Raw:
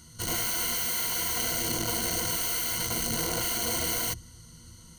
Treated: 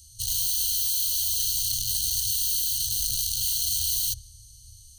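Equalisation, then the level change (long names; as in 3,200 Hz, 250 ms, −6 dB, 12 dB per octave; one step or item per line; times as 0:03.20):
elliptic band-stop filter 130–3,300 Hz, stop band 60 dB
dynamic equaliser 3,600 Hz, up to +6 dB, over −51 dBFS, Q 1.8
phaser with its sweep stopped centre 580 Hz, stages 6
+5.0 dB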